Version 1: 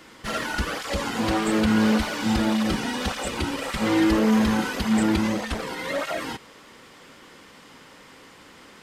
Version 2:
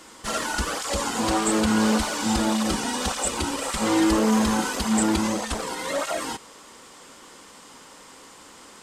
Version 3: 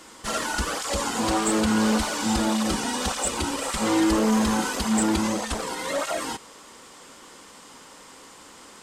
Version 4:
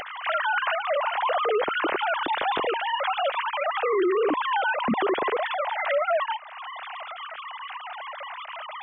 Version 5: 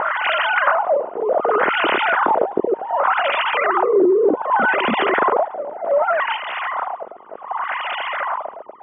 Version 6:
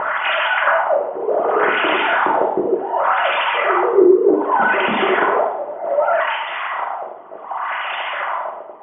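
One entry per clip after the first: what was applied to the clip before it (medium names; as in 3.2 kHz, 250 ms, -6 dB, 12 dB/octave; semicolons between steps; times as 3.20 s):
graphic EQ 125/1000/2000/8000 Hz -6/+4/-4/+11 dB
saturation -11 dBFS, distortion -25 dB
formants replaced by sine waves; peak limiter -19.5 dBFS, peak gain reduction 10.5 dB; upward compressor, threshold -29 dBFS; trim +2.5 dB
spectral levelling over time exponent 0.6; reverse echo 287 ms -6.5 dB; LFO low-pass sine 0.66 Hz 390–2900 Hz
gated-style reverb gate 270 ms falling, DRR -0.5 dB; trim -2 dB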